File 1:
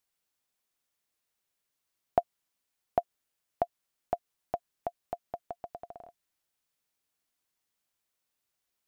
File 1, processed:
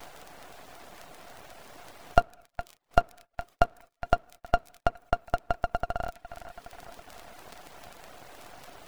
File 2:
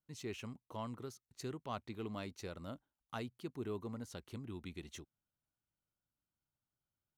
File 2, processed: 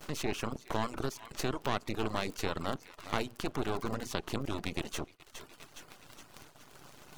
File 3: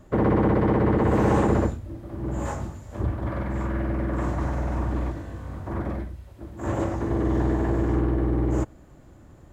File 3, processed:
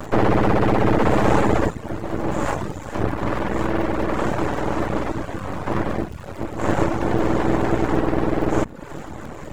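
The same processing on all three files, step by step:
compressor on every frequency bin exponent 0.6
mains-hum notches 60/120/180/240/300/360/420/480 Hz
feedback echo with a high-pass in the loop 414 ms, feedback 55%, high-pass 750 Hz, level −15.5 dB
in parallel at −3 dB: upward compression, threshold −26 dBFS
on the sum: low-shelf EQ 95 Hz −10.5 dB
rectangular room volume 1,400 cubic metres, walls mixed, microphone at 0.34 metres
surface crackle 41 per second −33 dBFS
half-wave rectification
high-shelf EQ 4,800 Hz −2.5 dB
reverb reduction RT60 0.65 s
noise gate −53 dBFS, range −25 dB
level +4.5 dB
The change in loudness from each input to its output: +6.5, +9.5, +3.0 LU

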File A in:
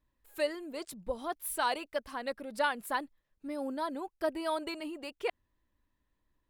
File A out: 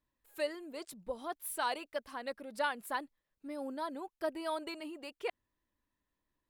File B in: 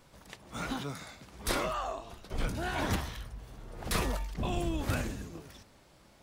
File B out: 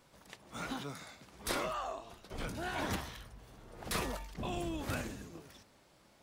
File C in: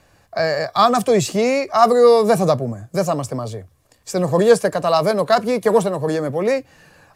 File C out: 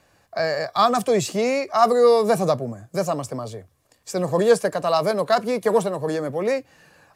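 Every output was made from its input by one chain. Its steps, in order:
low-shelf EQ 95 Hz −9 dB
level −3.5 dB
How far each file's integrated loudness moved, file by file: −3.5, −4.5, −4.0 LU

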